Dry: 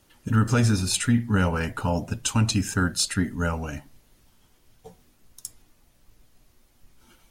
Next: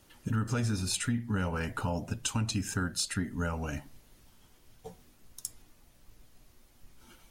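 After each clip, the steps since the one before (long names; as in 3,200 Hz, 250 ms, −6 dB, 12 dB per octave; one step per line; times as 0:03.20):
downward compressor 2.5 to 1, threshold −32 dBFS, peak gain reduction 11 dB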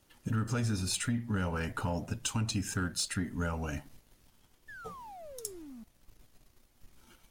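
sound drawn into the spectrogram fall, 0:04.68–0:05.84, 210–1,800 Hz −46 dBFS
leveller curve on the samples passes 1
level −4.5 dB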